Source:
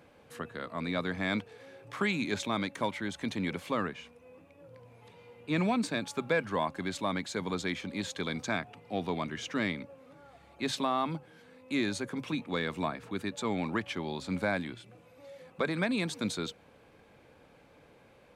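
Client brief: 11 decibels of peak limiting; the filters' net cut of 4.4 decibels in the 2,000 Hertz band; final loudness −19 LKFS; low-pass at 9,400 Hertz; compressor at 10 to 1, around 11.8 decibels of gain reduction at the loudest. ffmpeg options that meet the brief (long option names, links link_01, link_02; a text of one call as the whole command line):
ffmpeg -i in.wav -af "lowpass=9400,equalizer=frequency=2000:width_type=o:gain=-5.5,acompressor=threshold=-38dB:ratio=10,volume=27.5dB,alimiter=limit=-8dB:level=0:latency=1" out.wav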